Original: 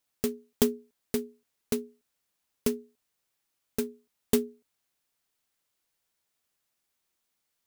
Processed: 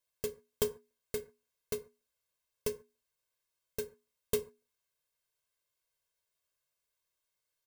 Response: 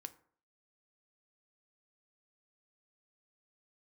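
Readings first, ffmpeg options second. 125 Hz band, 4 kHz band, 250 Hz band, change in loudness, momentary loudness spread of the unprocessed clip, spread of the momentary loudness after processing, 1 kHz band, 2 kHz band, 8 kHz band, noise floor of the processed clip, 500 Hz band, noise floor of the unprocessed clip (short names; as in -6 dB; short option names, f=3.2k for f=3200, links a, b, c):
-6.5 dB, -6.0 dB, -18.5 dB, -7.0 dB, 14 LU, 13 LU, -6.5 dB, -5.0 dB, -6.0 dB, under -85 dBFS, -5.5 dB, -81 dBFS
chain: -filter_complex "[0:a]aecho=1:1:1.9:0.96[a];[1:a]atrim=start_sample=2205,afade=t=out:st=0.2:d=0.01,atrim=end_sample=9261[b];[a][b]afir=irnorm=-1:irlink=0,volume=-3.5dB"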